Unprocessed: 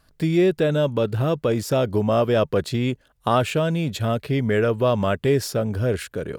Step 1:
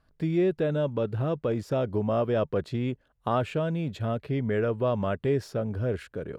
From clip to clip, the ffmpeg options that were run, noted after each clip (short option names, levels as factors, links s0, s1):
-af "lowpass=f=1800:p=1,volume=0.501"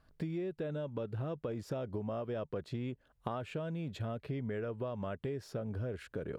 -af "acompressor=threshold=0.0178:ratio=10"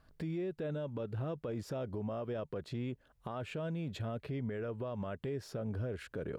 -af "alimiter=level_in=2.82:limit=0.0631:level=0:latency=1,volume=0.355,volume=1.26"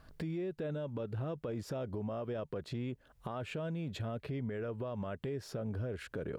-af "acompressor=threshold=0.00178:ratio=1.5,volume=2.24"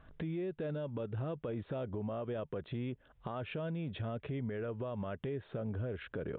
-af "aresample=8000,aresample=44100"